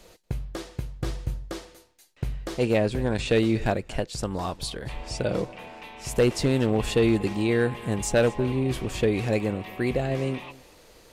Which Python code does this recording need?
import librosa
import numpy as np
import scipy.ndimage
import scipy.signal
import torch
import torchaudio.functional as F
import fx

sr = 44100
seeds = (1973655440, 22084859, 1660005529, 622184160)

y = fx.fix_declip(x, sr, threshold_db=-13.5)
y = fx.fix_echo_inverse(y, sr, delay_ms=237, level_db=-21.0)